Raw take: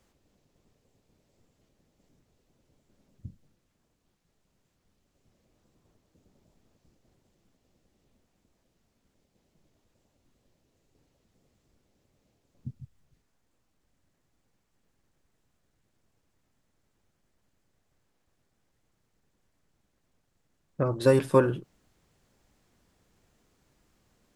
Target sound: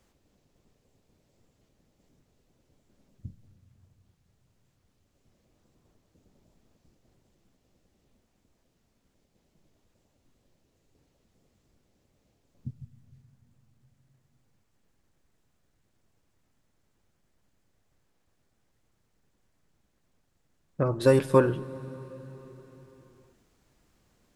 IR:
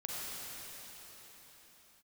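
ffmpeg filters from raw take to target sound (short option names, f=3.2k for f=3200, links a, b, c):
-filter_complex "[0:a]asplit=2[a][b];[1:a]atrim=start_sample=2205,lowshelf=f=200:g=9.5[c];[b][c]afir=irnorm=-1:irlink=0,volume=-19dB[d];[a][d]amix=inputs=2:normalize=0"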